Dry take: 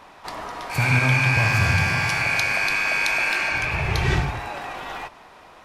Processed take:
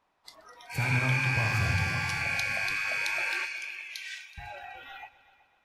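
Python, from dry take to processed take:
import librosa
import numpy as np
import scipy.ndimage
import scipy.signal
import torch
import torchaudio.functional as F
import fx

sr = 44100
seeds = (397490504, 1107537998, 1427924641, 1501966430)

y = fx.bessel_highpass(x, sr, hz=2600.0, order=2, at=(3.45, 4.38))
y = fx.noise_reduce_blind(y, sr, reduce_db=19)
y = fx.echo_heads(y, sr, ms=125, heads='all three', feedback_pct=44, wet_db=-22)
y = y * librosa.db_to_amplitude(-8.0)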